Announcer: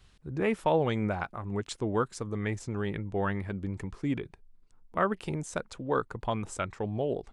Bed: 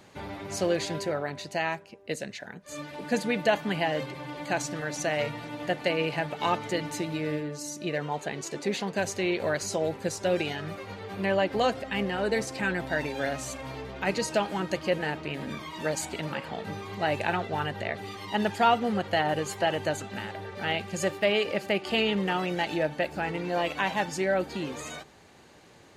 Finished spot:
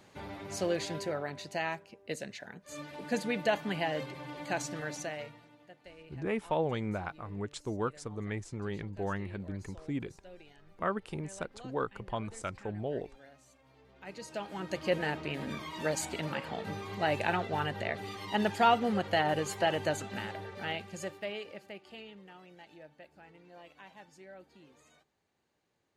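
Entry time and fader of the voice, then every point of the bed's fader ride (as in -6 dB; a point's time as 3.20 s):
5.85 s, -5.0 dB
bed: 4.89 s -5 dB
5.69 s -26 dB
13.66 s -26 dB
14.93 s -2.5 dB
20.31 s -2.5 dB
22.21 s -25 dB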